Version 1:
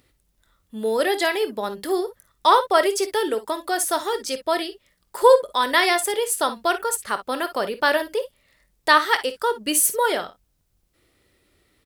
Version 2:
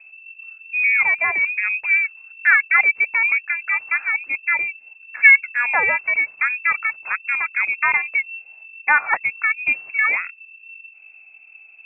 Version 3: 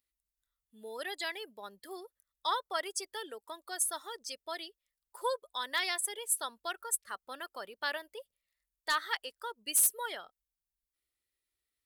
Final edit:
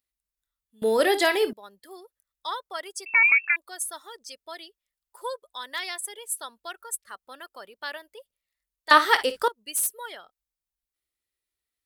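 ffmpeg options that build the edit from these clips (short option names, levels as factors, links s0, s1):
-filter_complex "[0:a]asplit=2[s0][s1];[2:a]asplit=4[s2][s3][s4][s5];[s2]atrim=end=0.822[s6];[s0]atrim=start=0.818:end=1.532[s7];[s3]atrim=start=1.528:end=3.062[s8];[1:a]atrim=start=3.058:end=3.562[s9];[s4]atrim=start=3.558:end=8.912[s10];[s1]atrim=start=8.908:end=9.482[s11];[s5]atrim=start=9.478[s12];[s6][s7]acrossfade=d=0.004:c1=hsin:c2=hsin[s13];[s13][s8]acrossfade=d=0.004:c1=hsin:c2=hsin[s14];[s14][s9]acrossfade=d=0.004:c1=hsin:c2=hsin[s15];[s15][s10]acrossfade=d=0.004:c1=hsin:c2=hsin[s16];[s16][s11]acrossfade=d=0.004:c1=hsin:c2=hsin[s17];[s17][s12]acrossfade=d=0.004:c1=hsin:c2=hsin"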